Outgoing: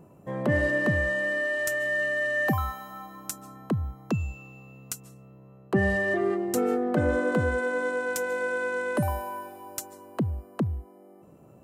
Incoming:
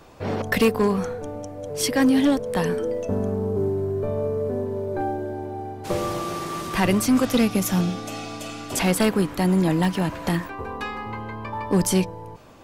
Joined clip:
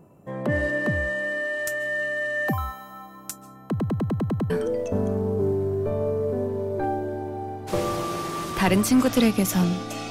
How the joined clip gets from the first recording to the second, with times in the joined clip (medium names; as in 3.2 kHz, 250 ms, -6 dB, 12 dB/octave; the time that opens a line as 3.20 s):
outgoing
3.70 s: stutter in place 0.10 s, 8 plays
4.50 s: go over to incoming from 2.67 s